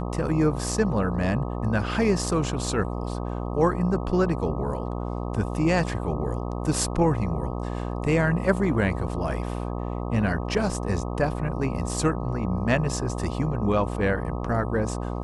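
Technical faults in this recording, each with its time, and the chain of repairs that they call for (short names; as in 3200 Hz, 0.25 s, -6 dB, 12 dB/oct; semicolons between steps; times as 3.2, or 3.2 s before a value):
buzz 60 Hz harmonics 21 -30 dBFS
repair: de-hum 60 Hz, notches 21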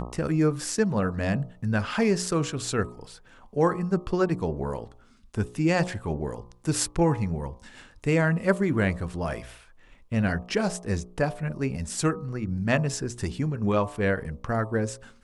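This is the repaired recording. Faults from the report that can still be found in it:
none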